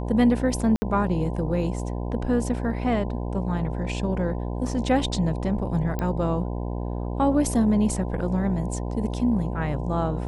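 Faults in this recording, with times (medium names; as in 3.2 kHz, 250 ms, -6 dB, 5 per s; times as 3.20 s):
buzz 60 Hz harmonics 17 -29 dBFS
0.76–0.82 s: dropout 60 ms
5.99 s: pop -15 dBFS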